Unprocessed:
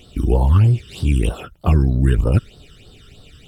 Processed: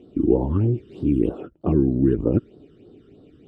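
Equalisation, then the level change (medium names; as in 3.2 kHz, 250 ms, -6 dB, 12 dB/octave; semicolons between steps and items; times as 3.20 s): band-pass filter 320 Hz, Q 2.7; +8.0 dB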